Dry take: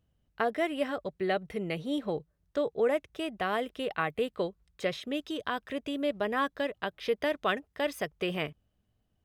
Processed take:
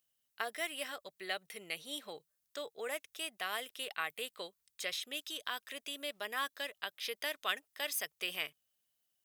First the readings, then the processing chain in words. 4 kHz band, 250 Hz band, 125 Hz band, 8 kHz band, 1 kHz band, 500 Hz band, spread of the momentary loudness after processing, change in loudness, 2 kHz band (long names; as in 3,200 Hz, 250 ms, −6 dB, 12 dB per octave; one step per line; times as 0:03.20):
+1.0 dB, −20.0 dB, below −20 dB, +9.0 dB, −9.0 dB, −14.5 dB, 6 LU, −7.0 dB, −3.5 dB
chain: first difference
level +8 dB